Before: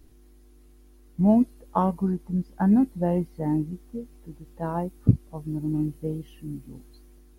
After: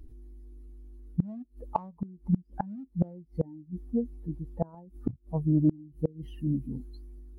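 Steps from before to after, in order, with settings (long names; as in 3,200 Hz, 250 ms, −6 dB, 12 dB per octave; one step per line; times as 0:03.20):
expanding power law on the bin magnitudes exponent 1.6
in parallel at −9 dB: hard clipping −17.5 dBFS, distortion −12 dB
on the sum: gate with flip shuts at −18 dBFS, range −28 dB
highs frequency-modulated by the lows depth 0.11 ms
level +4 dB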